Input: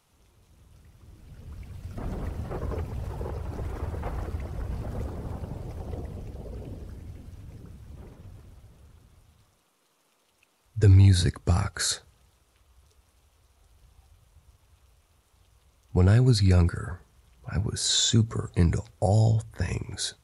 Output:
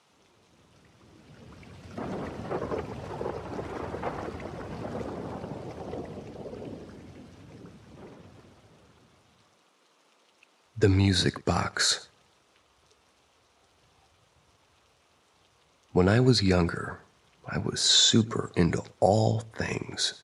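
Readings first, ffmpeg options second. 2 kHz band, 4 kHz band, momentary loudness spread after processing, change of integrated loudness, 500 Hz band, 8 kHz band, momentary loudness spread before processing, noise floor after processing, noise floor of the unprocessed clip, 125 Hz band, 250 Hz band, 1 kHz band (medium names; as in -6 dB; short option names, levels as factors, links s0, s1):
+5.0 dB, +4.5 dB, 18 LU, -1.0 dB, +5.0 dB, +0.5 dB, 21 LU, -66 dBFS, -68 dBFS, -6.5 dB, +2.0 dB, +5.0 dB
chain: -filter_complex "[0:a]highpass=210,lowpass=6300,asplit=2[s0][s1];[s1]adelay=116.6,volume=0.0708,highshelf=f=4000:g=-2.62[s2];[s0][s2]amix=inputs=2:normalize=0,volume=1.78"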